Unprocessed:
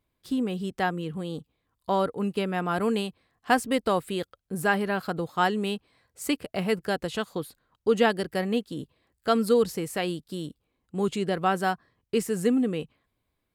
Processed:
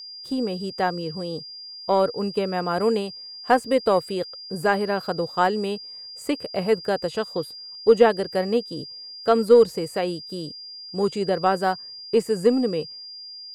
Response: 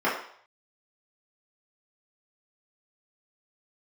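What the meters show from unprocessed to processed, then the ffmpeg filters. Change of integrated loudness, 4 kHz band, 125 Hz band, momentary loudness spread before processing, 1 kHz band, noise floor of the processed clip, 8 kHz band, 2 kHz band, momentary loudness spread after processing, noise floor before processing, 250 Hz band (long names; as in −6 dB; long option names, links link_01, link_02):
+4.5 dB, +5.0 dB, +0.5 dB, 13 LU, +3.5 dB, −40 dBFS, −2.5 dB, 0.0 dB, 15 LU, −79 dBFS, +1.0 dB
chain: -filter_complex "[0:a]asplit=2[link_01][link_02];[link_02]asoftclip=type=tanh:threshold=-17dB,volume=-11dB[link_03];[link_01][link_03]amix=inputs=2:normalize=0,aeval=exprs='0.473*(cos(1*acos(clip(val(0)/0.473,-1,1)))-cos(1*PI/2))+0.0376*(cos(2*acos(clip(val(0)/0.473,-1,1)))-cos(2*PI/2))+0.0168*(cos(7*acos(clip(val(0)/0.473,-1,1)))-cos(7*PI/2))':channel_layout=same,aeval=exprs='val(0)+0.0158*sin(2*PI*4800*n/s)':channel_layout=same,equalizer=frequency=125:width_type=o:width=1:gain=4,equalizer=frequency=500:width_type=o:width=1:gain=9,equalizer=frequency=1000:width_type=o:width=1:gain=3,equalizer=frequency=8000:width_type=o:width=1:gain=6,acrossover=split=2900[link_04][link_05];[link_05]acompressor=threshold=-34dB:ratio=4:attack=1:release=60[link_06];[link_04][link_06]amix=inputs=2:normalize=0,volume=-2.5dB"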